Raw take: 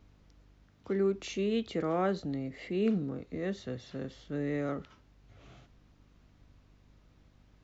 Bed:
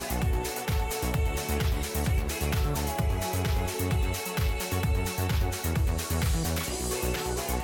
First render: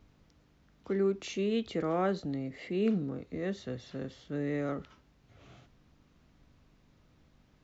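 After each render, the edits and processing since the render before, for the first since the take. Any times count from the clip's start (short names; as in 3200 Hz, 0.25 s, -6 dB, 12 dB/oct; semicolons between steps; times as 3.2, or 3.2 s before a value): de-hum 50 Hz, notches 2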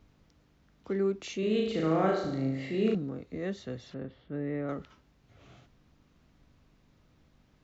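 1.39–2.95 flutter echo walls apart 6.4 m, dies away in 0.82 s; 3.94–4.69 air absorption 410 m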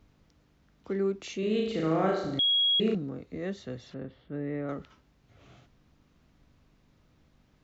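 2.39–2.8 bleep 3310 Hz -21.5 dBFS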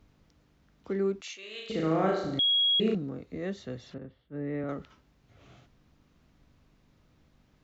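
1.21–1.7 HPF 1200 Hz; 3.98–4.64 three-band expander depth 100%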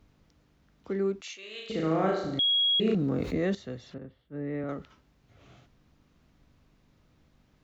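2.84–3.55 fast leveller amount 70%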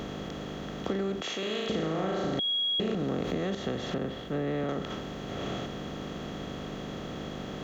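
per-bin compression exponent 0.4; compressor 6:1, threshold -27 dBFS, peak gain reduction 9 dB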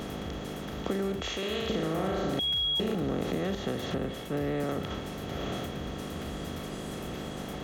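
add bed -16.5 dB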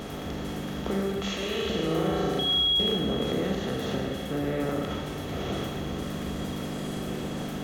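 Schroeder reverb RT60 1.7 s, combs from 31 ms, DRR 0.5 dB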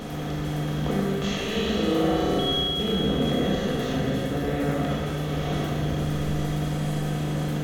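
echo with dull and thin repeats by turns 0.127 s, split 2000 Hz, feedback 72%, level -5 dB; shoebox room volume 840 m³, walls furnished, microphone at 1.9 m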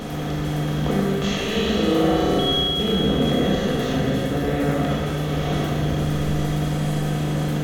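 gain +4 dB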